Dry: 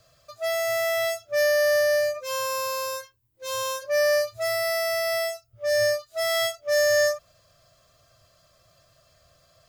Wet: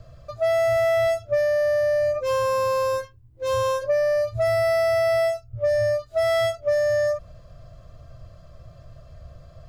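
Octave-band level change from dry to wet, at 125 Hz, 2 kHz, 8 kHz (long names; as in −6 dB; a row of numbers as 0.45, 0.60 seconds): +15.5, −3.5, −9.5 decibels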